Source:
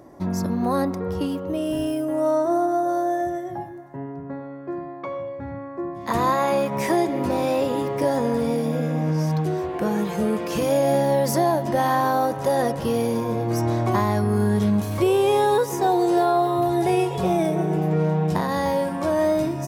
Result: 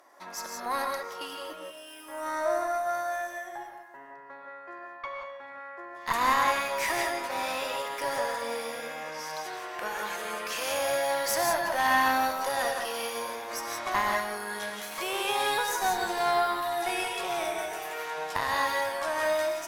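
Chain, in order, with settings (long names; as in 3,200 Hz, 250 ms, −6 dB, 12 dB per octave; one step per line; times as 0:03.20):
high-pass filter 1,100 Hz 12 dB per octave
parametric band 1,700 Hz +3 dB 2.7 octaves
0:01.41–0:02.08: compressor whose output falls as the input rises −41 dBFS, ratio −0.5
0:17.58–0:18.18: spectral tilt +2.5 dB per octave
tube saturation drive 16 dB, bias 0.75
reverb whose tail is shaped and stops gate 200 ms rising, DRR 1.5 dB
level +2.5 dB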